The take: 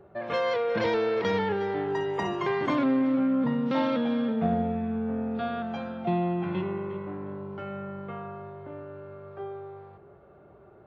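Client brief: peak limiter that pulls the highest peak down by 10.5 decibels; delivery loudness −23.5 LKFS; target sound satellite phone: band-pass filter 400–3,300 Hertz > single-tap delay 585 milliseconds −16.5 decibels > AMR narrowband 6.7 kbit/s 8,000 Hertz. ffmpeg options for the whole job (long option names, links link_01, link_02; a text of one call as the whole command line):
ffmpeg -i in.wav -af "alimiter=limit=-24dB:level=0:latency=1,highpass=400,lowpass=3300,aecho=1:1:585:0.15,volume=13.5dB" -ar 8000 -c:a libopencore_amrnb -b:a 6700 out.amr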